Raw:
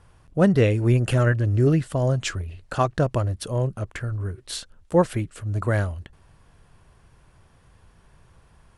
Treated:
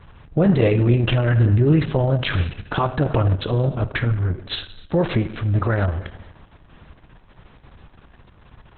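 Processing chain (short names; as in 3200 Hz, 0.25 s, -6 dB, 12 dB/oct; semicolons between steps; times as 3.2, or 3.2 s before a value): limiter -17.5 dBFS, peak gain reduction 11 dB; reverb RT60 1.1 s, pre-delay 5 ms, DRR 10 dB; gain +9 dB; Opus 6 kbps 48000 Hz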